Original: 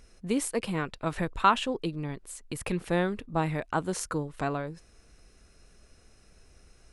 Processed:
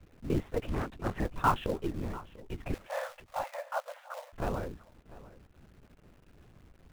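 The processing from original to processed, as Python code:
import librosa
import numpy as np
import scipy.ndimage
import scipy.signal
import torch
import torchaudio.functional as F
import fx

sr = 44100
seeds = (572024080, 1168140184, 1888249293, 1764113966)

p1 = fx.lpc_vocoder(x, sr, seeds[0], excitation='whisper', order=10)
p2 = fx.lowpass(p1, sr, hz=1100.0, slope=6)
p3 = fx.quant_companded(p2, sr, bits=4)
p4 = p2 + (p3 * librosa.db_to_amplitude(-5.0))
p5 = fx.brickwall_highpass(p4, sr, low_hz=500.0, at=(2.74, 4.33))
p6 = p5 + 10.0 ** (-19.0 / 20.0) * np.pad(p5, (int(694 * sr / 1000.0), 0))[:len(p5)]
p7 = fx.doppler_dist(p6, sr, depth_ms=0.58, at=(0.67, 1.2))
y = p7 * librosa.db_to_amplitude(-5.5)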